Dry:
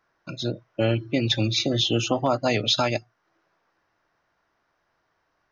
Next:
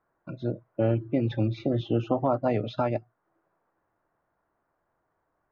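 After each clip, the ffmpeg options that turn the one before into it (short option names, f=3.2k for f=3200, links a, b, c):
-af "lowpass=1.1k,volume=-1.5dB"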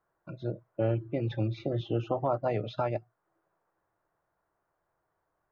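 -af "equalizer=f=250:t=o:w=0.28:g=-11.5,volume=-3dB"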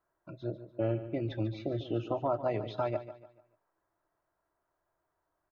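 -af "aecho=1:1:3.1:0.33,aecho=1:1:146|292|438|584:0.224|0.0828|0.0306|0.0113,volume=-3dB"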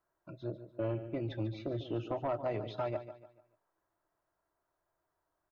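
-af "asoftclip=type=tanh:threshold=-23.5dB,volume=-2dB"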